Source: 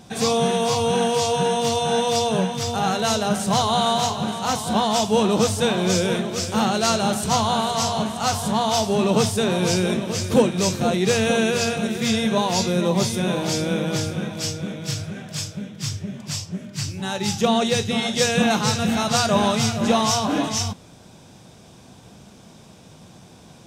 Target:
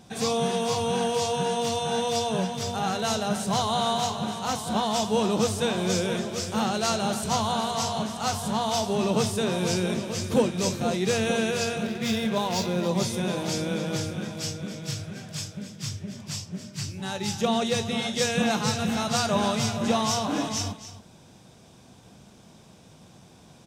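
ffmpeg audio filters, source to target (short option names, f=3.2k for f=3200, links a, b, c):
-filter_complex "[0:a]asplit=2[a][b];[b]aecho=0:1:275:0.211[c];[a][c]amix=inputs=2:normalize=0,asettb=1/sr,asplit=3[d][e][f];[d]atrim=end=11.834[g];[e]atrim=start=11.83:end=12.89,asetpts=PTS-STARTPTS,afade=t=in:d=0.004:c=qsin,afade=t=out:st=1.056:d=0.004:c=qsin,adynamicsmooth=sensitivity=6:basefreq=1.8k[h];[f]atrim=start=12.886[i];[g][h]acrossfade=d=0.004:c1=hsin:c2=qsin[j];[j][i]acrossfade=d=0.004:c1=qsin:c2=hsin,volume=-5.5dB"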